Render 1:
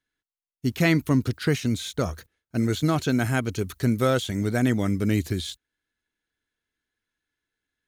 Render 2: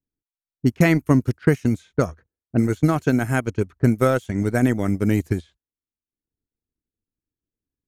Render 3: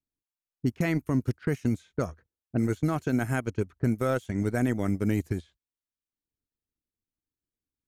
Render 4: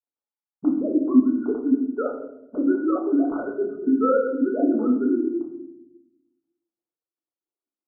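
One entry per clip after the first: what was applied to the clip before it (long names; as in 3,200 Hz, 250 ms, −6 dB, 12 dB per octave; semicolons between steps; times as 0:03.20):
parametric band 3,800 Hz −10.5 dB 0.81 octaves; low-pass that shuts in the quiet parts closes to 320 Hz, open at −20.5 dBFS; transient designer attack +5 dB, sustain −12 dB; level +2.5 dB
brickwall limiter −11 dBFS, peak gain reduction 8.5 dB; level −5.5 dB
three sine waves on the formant tracks; linear-phase brick-wall low-pass 1,500 Hz; convolution reverb RT60 0.90 s, pre-delay 4 ms, DRR −2.5 dB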